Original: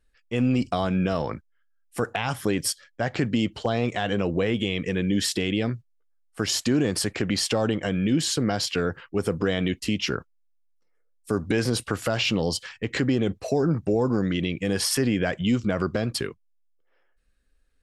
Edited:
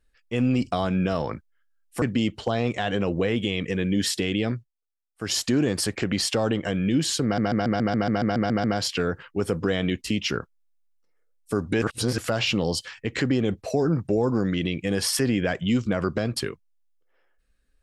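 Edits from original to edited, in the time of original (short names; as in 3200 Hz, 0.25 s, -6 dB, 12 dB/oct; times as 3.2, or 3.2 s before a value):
2.02–3.2 cut
5.72–6.5 dip -19 dB, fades 0.17 s
8.42 stutter 0.14 s, 11 plays
11.6–11.96 reverse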